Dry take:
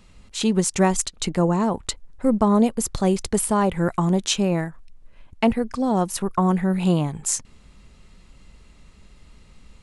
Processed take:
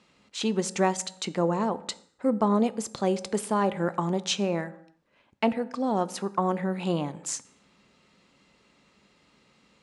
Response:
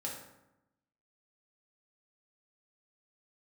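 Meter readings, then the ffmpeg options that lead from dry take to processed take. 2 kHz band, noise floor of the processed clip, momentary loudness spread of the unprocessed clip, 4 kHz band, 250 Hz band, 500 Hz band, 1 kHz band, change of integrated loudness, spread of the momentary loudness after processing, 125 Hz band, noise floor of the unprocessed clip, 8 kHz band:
−4.0 dB, −66 dBFS, 6 LU, −4.5 dB, −7.5 dB, −4.0 dB, −3.5 dB, −6.0 dB, 7 LU, −9.5 dB, −51 dBFS, −9.0 dB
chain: -filter_complex "[0:a]highpass=230,lowpass=6300,asplit=2[link_01][link_02];[1:a]atrim=start_sample=2205,afade=type=out:start_time=0.38:duration=0.01,atrim=end_sample=17199[link_03];[link_02][link_03]afir=irnorm=-1:irlink=0,volume=-12dB[link_04];[link_01][link_04]amix=inputs=2:normalize=0,volume=-5dB"

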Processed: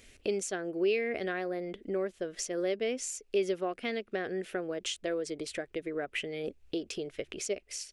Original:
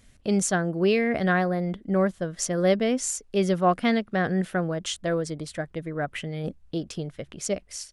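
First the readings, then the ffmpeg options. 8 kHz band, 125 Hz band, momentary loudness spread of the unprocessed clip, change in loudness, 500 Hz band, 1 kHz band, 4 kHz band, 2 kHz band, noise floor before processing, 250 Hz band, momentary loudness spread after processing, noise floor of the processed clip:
−7.5 dB, −19.5 dB, 11 LU, −8.5 dB, −6.0 dB, −13.5 dB, −4.5 dB, −8.0 dB, −57 dBFS, −11.5 dB, 7 LU, −64 dBFS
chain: -af "bass=frequency=250:gain=-4,treble=frequency=4000:gain=5,acompressor=threshold=-38dB:ratio=3,equalizer=frequency=160:width_type=o:width=0.67:gain=-9,equalizer=frequency=400:width_type=o:width=0.67:gain=10,equalizer=frequency=1000:width_type=o:width=0.67:gain=-4,equalizer=frequency=2500:width_type=o:width=0.67:gain=9,equalizer=frequency=10000:width_type=o:width=0.67:gain=-4"

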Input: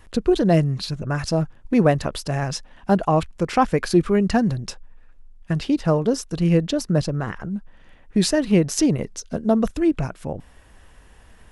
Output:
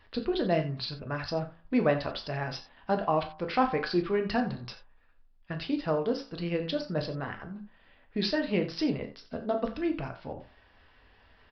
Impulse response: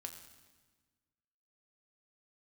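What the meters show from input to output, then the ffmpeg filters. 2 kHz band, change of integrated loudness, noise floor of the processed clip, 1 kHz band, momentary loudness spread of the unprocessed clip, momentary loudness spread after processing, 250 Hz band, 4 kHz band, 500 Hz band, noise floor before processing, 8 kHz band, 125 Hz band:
−5.0 dB, −9.5 dB, −61 dBFS, −7.0 dB, 11 LU, 13 LU, −11.0 dB, −5.5 dB, −8.0 dB, −50 dBFS, below −25 dB, −13.5 dB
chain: -filter_complex "[0:a]aresample=11025,aresample=44100,lowshelf=frequency=360:gain=-9,bandreject=frequency=55.55:width_type=h:width=4,bandreject=frequency=111.1:width_type=h:width=4,bandreject=frequency=166.65:width_type=h:width=4,bandreject=frequency=222.2:width_type=h:width=4,bandreject=frequency=277.75:width_type=h:width=4,bandreject=frequency=333.3:width_type=h:width=4,bandreject=frequency=388.85:width_type=h:width=4,bandreject=frequency=444.4:width_type=h:width=4,bandreject=frequency=499.95:width_type=h:width=4,bandreject=frequency=555.5:width_type=h:width=4,bandreject=frequency=611.05:width_type=h:width=4,bandreject=frequency=666.6:width_type=h:width=4,bandreject=frequency=722.15:width_type=h:width=4,bandreject=frequency=777.7:width_type=h:width=4,bandreject=frequency=833.25:width_type=h:width=4,bandreject=frequency=888.8:width_type=h:width=4,bandreject=frequency=944.35:width_type=h:width=4,bandreject=frequency=999.9:width_type=h:width=4,bandreject=frequency=1055.45:width_type=h:width=4,bandreject=frequency=1111:width_type=h:width=4,bandreject=frequency=1166.55:width_type=h:width=4,bandreject=frequency=1222.1:width_type=h:width=4,bandreject=frequency=1277.65:width_type=h:width=4,bandreject=frequency=1333.2:width_type=h:width=4,bandreject=frequency=1388.75:width_type=h:width=4,bandreject=frequency=1444.3:width_type=h:width=4,bandreject=frequency=1499.85:width_type=h:width=4,bandreject=frequency=1555.4:width_type=h:width=4,bandreject=frequency=1610.95:width_type=h:width=4,bandreject=frequency=1666.5:width_type=h:width=4,bandreject=frequency=1722.05:width_type=h:width=4[link_01];[1:a]atrim=start_sample=2205,atrim=end_sample=4410[link_02];[link_01][link_02]afir=irnorm=-1:irlink=0"

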